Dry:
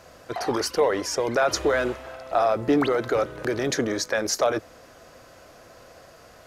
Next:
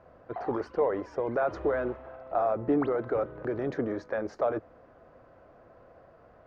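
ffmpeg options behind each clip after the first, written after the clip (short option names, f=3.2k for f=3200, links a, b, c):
-af "lowpass=1.2k,volume=-5dB"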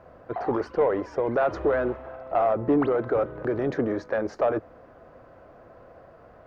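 -af "asoftclip=type=tanh:threshold=-18dB,volume=5.5dB"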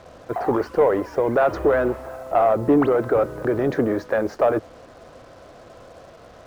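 -af "acrusher=bits=8:mix=0:aa=0.5,volume=5dB"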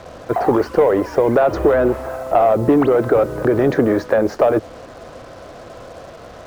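-filter_complex "[0:a]acrossover=split=930|2100[a][b][c];[a]acompressor=threshold=-19dB:ratio=4[d];[b]acompressor=threshold=-38dB:ratio=4[e];[c]acompressor=threshold=-43dB:ratio=4[f];[d][e][f]amix=inputs=3:normalize=0,volume=8dB"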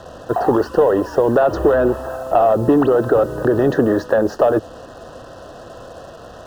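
-af "asuperstop=centerf=2200:order=12:qfactor=3.4"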